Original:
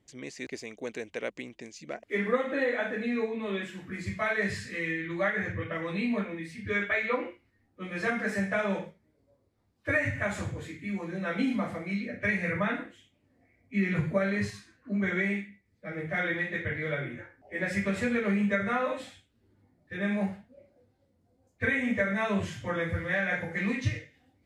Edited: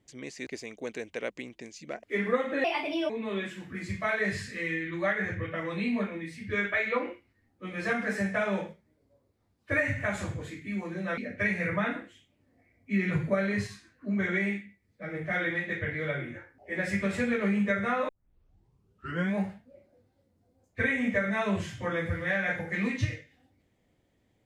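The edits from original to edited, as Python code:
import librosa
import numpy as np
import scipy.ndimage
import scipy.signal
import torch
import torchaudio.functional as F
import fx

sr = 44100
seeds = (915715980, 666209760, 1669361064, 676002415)

y = fx.edit(x, sr, fx.speed_span(start_s=2.64, length_s=0.63, speed=1.38),
    fx.cut(start_s=11.35, length_s=0.66),
    fx.tape_start(start_s=18.92, length_s=1.27), tone=tone)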